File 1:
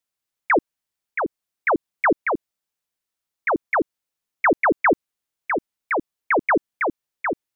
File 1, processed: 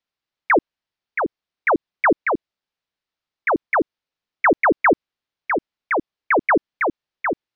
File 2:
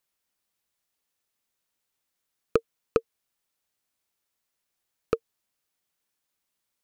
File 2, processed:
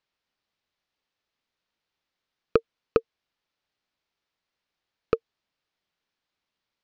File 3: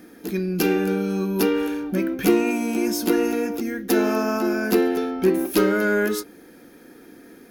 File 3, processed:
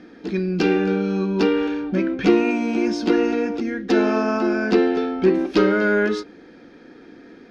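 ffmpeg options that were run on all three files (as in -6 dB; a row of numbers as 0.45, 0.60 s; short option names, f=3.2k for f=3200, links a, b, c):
-af "lowpass=f=4.9k:w=0.5412,lowpass=f=4.9k:w=1.3066,volume=2dB"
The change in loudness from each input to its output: +2.0, +2.0, +2.0 LU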